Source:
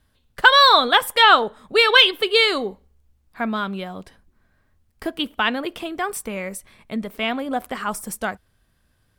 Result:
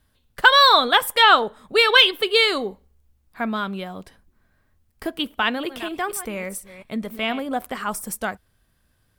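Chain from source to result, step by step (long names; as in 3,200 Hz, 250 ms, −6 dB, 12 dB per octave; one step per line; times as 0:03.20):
0:05.18–0:07.43: delay that plays each chunk backwards 235 ms, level −13 dB
high-shelf EQ 12,000 Hz +6.5 dB
level −1 dB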